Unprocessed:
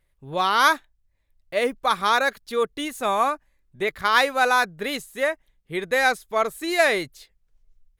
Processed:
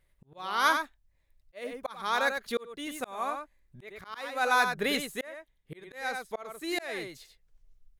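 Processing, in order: echo from a far wall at 16 m, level -8 dB; slow attack 691 ms; trim -1 dB

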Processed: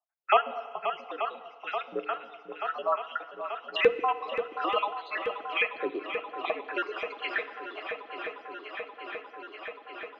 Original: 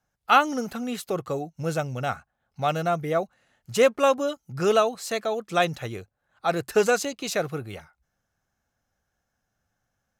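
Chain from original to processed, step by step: random holes in the spectrogram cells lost 68%; gate with hold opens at -51 dBFS; mistuned SSB -64 Hz 260–3500 Hz; LFO high-pass saw up 0.52 Hz 330–2700 Hz; on a send: shuffle delay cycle 883 ms, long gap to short 1.5:1, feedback 71%, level -13.5 dB; on the sum: FDN reverb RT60 1.3 s, low-frequency decay 0.8×, high-frequency decay 0.95×, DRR 12.5 dB; three bands compressed up and down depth 40%

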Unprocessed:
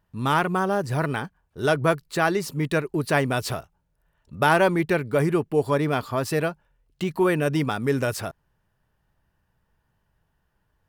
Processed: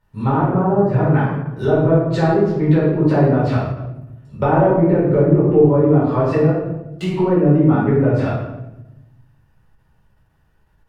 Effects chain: low-pass that closes with the level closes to 620 Hz, closed at -19 dBFS; simulated room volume 370 m³, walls mixed, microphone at 4.6 m; endings held to a fixed fall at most 190 dB/s; trim -3 dB

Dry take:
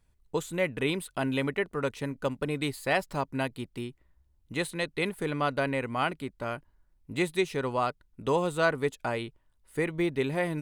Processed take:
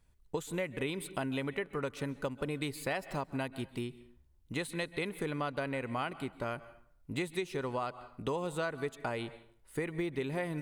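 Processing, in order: plate-style reverb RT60 0.59 s, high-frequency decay 0.75×, pre-delay 120 ms, DRR 19 dB; compression 5:1, threshold -32 dBFS, peak gain reduction 12 dB

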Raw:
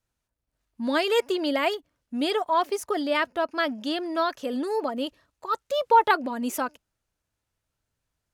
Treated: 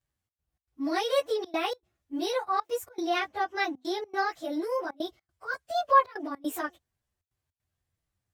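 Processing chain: frequency-domain pitch shifter +3 st; trance gate "xxx.xx.xxxxx" 156 bpm -24 dB; peaking EQ 89 Hz +9.5 dB 0.62 oct; trim -1 dB

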